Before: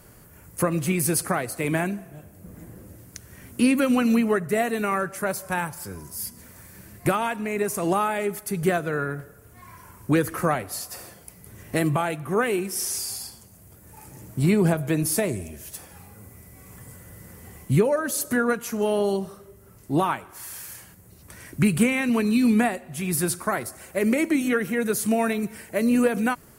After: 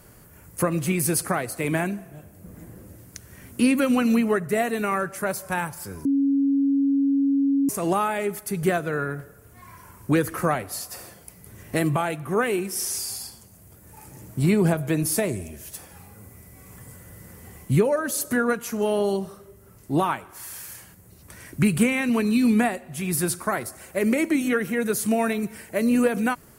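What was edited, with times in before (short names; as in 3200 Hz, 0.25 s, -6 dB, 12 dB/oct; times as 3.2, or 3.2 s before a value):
6.05–7.69 bleep 277 Hz -17.5 dBFS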